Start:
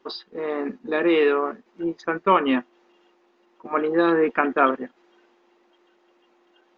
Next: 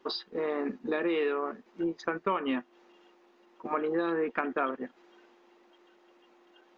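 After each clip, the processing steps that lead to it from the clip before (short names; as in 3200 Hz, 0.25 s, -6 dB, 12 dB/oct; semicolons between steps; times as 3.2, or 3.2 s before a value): compressor 4:1, threshold -28 dBFS, peak gain reduction 13.5 dB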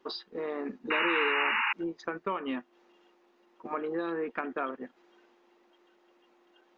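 painted sound noise, 0.9–1.73, 820–2900 Hz -25 dBFS; gain -3.5 dB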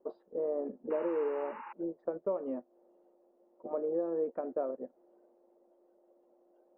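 synth low-pass 580 Hz, resonance Q 4.9; gain -6.5 dB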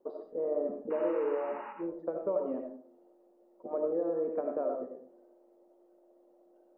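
digital reverb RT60 0.5 s, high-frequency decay 0.45×, pre-delay 40 ms, DRR 2.5 dB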